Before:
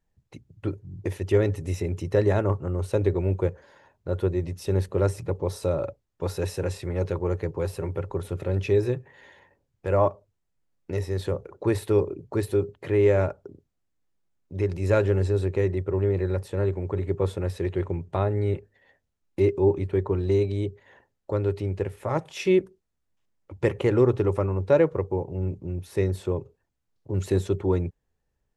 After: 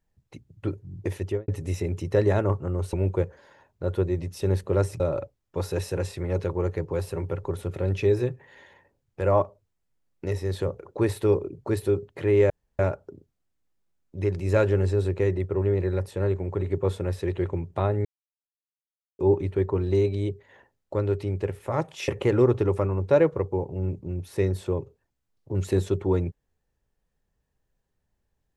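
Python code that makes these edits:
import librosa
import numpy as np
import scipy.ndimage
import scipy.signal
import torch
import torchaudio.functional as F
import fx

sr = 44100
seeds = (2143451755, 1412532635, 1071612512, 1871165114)

y = fx.studio_fade_out(x, sr, start_s=1.2, length_s=0.28)
y = fx.edit(y, sr, fx.cut(start_s=2.93, length_s=0.25),
    fx.cut(start_s=5.25, length_s=0.41),
    fx.insert_room_tone(at_s=13.16, length_s=0.29),
    fx.silence(start_s=18.42, length_s=1.14),
    fx.cut(start_s=22.45, length_s=1.22), tone=tone)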